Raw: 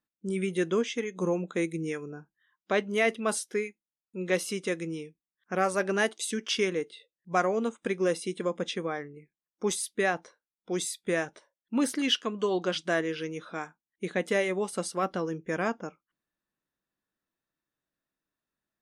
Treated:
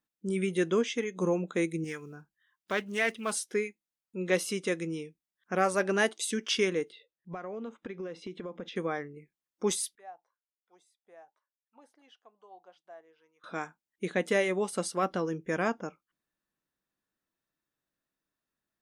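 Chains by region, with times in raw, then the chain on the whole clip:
1.84–3.47 s: block-companded coder 7-bit + peaking EQ 420 Hz -7 dB 2.6 oct + loudspeaker Doppler distortion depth 0.13 ms
6.92–8.76 s: compression 16:1, threshold -34 dBFS + distance through air 190 m
9.95–13.44 s: pre-emphasis filter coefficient 0.8 + auto-wah 760–1800 Hz, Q 5.7, down, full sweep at -39.5 dBFS
whole clip: none

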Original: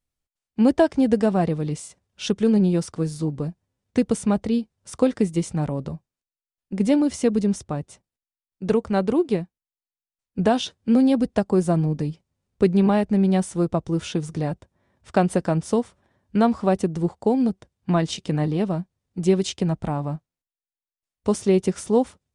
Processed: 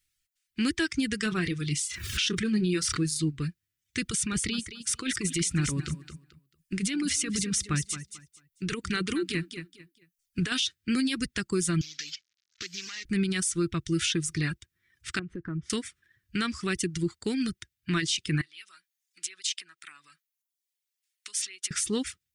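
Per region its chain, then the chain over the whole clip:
1.23–3.05 s: dynamic bell 8.8 kHz, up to -5 dB, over -50 dBFS, Q 0.78 + doubling 28 ms -10.5 dB + swell ahead of each attack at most 70 dB/s
4.02–10.52 s: compressor with a negative ratio -22 dBFS + feedback delay 221 ms, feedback 27%, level -10 dB
11.81–13.05 s: CVSD coder 32 kbps + tilt EQ +4.5 dB/octave + compression 8:1, threshold -38 dBFS
15.19–15.70 s: low-pass 1 kHz + compression 4:1, threshold -26 dBFS
18.41–21.71 s: compression 12:1, threshold -30 dBFS + Bessel high-pass 1.6 kHz
whole clip: reverb removal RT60 0.74 s; FFT filter 140 Hz 0 dB, 240 Hz -9 dB, 340 Hz 0 dB, 590 Hz -25 dB, 880 Hz -20 dB, 1.3 kHz +4 dB, 1.9 kHz +12 dB; peak limiter -18 dBFS

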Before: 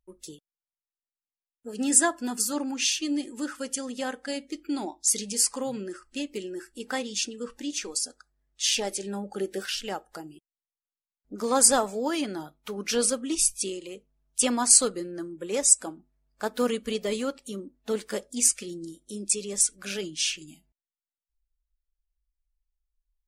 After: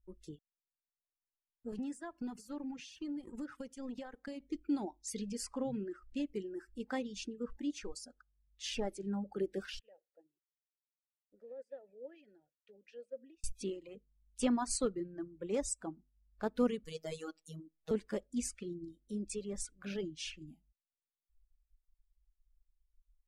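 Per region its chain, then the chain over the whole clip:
1.72–4.42 s: high-pass 50 Hz 24 dB/octave + waveshaping leveller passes 1 + compression 5:1, threshold -34 dBFS
9.79–13.44 s: compression 10:1, threshold -32 dBFS + vowel filter e + three bands expanded up and down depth 100%
16.85–17.91 s: tone controls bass -10 dB, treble +10 dB + robot voice 159 Hz
whole clip: reverb removal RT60 1.2 s; RIAA curve playback; trim -9 dB

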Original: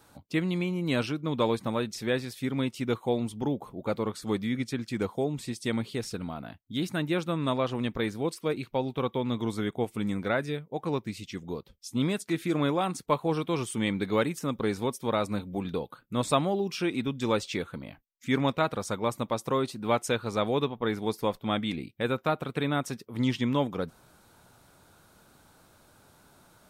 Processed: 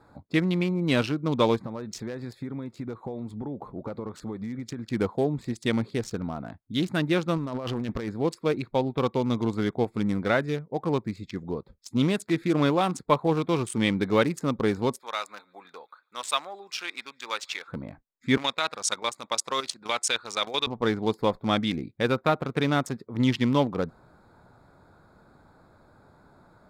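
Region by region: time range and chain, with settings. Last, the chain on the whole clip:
1.57–4.84 s: compression 16:1, threshold -33 dBFS + tape noise reduction on one side only decoder only
7.37–8.09 s: compressor with a negative ratio -34 dBFS + overload inside the chain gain 27.5 dB
14.99–17.68 s: high-pass 1.3 kHz + feedback echo behind a high-pass 144 ms, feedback 61%, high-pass 2 kHz, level -23.5 dB
18.37–20.67 s: frequency weighting ITU-R 468 + level held to a coarse grid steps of 10 dB
whole clip: local Wiener filter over 15 samples; peaking EQ 3.8 kHz +2.5 dB 1.9 oct; trim +4 dB

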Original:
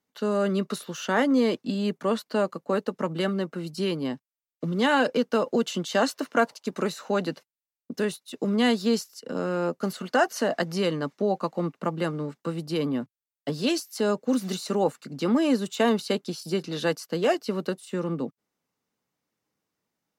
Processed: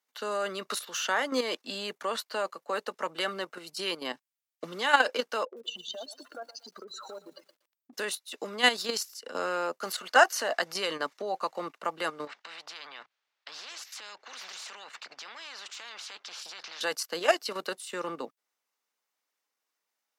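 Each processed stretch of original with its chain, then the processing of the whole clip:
5.45–7.93 s: spectral contrast enhancement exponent 2.8 + compression 10:1, threshold -36 dBFS + bit-crushed delay 118 ms, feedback 35%, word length 10-bit, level -12.5 dB
12.27–16.81 s: distance through air 210 m + compression 2:1, threshold -41 dBFS + spectrum-flattening compressor 4:1
whole clip: level held to a coarse grid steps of 10 dB; Bessel high-pass 940 Hz, order 2; trim +8 dB

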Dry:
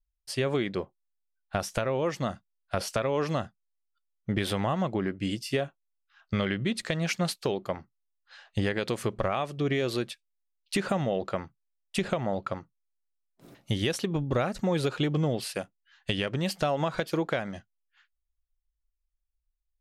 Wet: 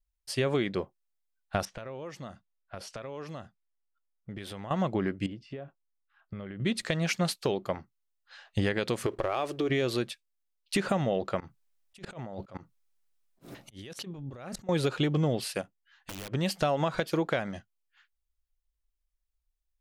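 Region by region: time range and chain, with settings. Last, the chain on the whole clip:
1.65–4.71 s: level-controlled noise filter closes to 1.5 kHz, open at -25.5 dBFS + compression 2:1, threshold -47 dBFS
5.26–6.60 s: compression 4:1, threshold -36 dBFS + tape spacing loss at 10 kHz 37 dB
9.06–9.70 s: resonant low shelf 260 Hz -7 dB, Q 3 + compression, threshold -27 dBFS + waveshaping leveller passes 1
11.40–14.69 s: compressor with a negative ratio -39 dBFS + slow attack 150 ms
15.61–16.32 s: treble shelf 3 kHz -5 dB + integer overflow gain 24.5 dB + compression 10:1, threshold -37 dBFS
whole clip: none

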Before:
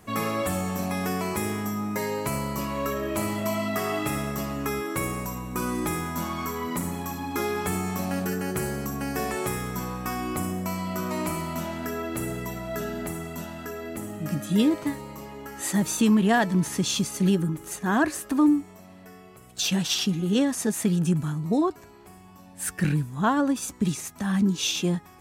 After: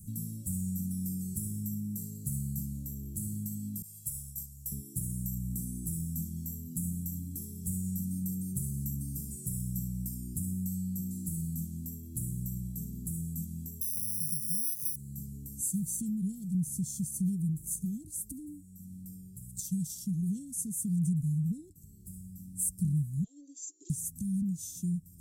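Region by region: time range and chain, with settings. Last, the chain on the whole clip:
3.82–4.72 s: expander -25 dBFS + amplifier tone stack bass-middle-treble 10-0-10
13.81–14.96 s: tape spacing loss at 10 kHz 35 dB + compression 3:1, threshold -34 dBFS + careless resampling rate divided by 8×, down filtered, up zero stuff
23.24–23.90 s: brick-wall FIR band-pass 290–7600 Hz + band-stop 440 Hz, Q 8.1
whole clip: compression 2.5:1, threshold -38 dBFS; elliptic band-stop 170–8200 Hz, stop band 80 dB; trim +7.5 dB

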